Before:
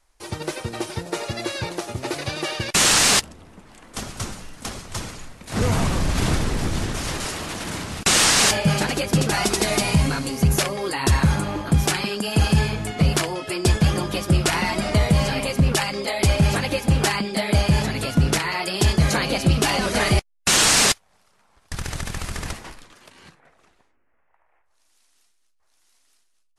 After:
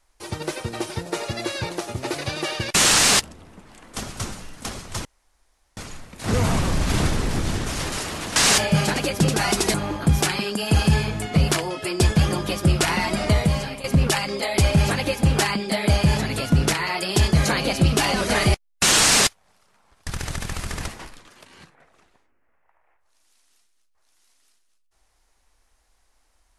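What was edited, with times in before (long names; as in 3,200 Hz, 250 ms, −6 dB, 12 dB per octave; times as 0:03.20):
0:05.05: splice in room tone 0.72 s
0:07.64–0:08.29: remove
0:09.67–0:11.39: remove
0:14.97–0:15.49: fade out, to −13 dB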